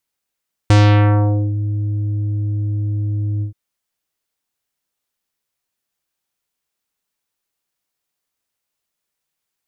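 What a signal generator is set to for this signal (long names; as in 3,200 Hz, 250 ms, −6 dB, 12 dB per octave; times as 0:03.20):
subtractive voice square G#2 24 dB per octave, low-pass 280 Hz, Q 0.77, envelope 5 octaves, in 0.85 s, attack 1.6 ms, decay 0.81 s, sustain −11 dB, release 0.11 s, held 2.72 s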